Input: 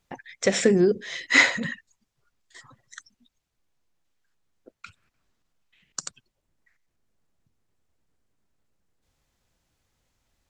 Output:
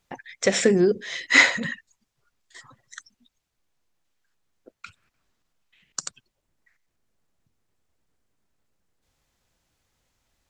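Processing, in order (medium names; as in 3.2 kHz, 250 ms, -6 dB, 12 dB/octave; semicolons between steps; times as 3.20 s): bass shelf 370 Hz -3 dB; trim +2 dB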